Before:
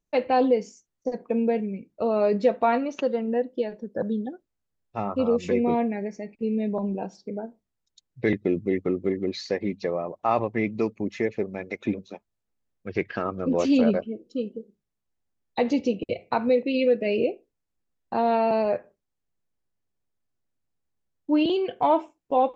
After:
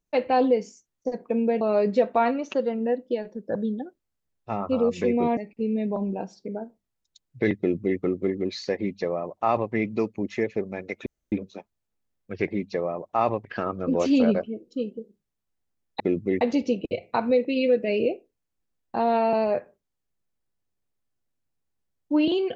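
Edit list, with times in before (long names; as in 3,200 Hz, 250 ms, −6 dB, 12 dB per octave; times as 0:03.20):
0:01.61–0:02.08: remove
0:05.84–0:06.19: remove
0:08.40–0:08.81: duplicate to 0:15.59
0:09.58–0:10.55: duplicate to 0:13.04
0:11.88: splice in room tone 0.26 s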